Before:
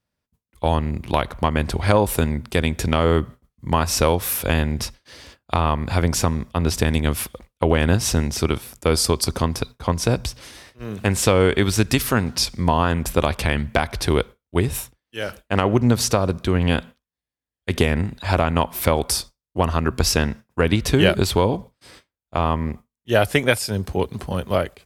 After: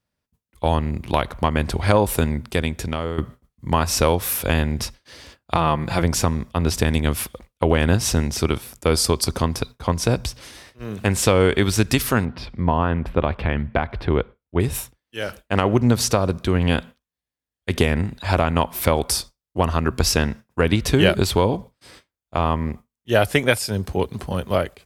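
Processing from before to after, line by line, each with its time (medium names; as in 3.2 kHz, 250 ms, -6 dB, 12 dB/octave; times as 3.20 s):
2.40–3.18 s: fade out, to -12 dB
5.55–6.03 s: comb 5.9 ms, depth 63%
12.25–14.60 s: distance through air 420 m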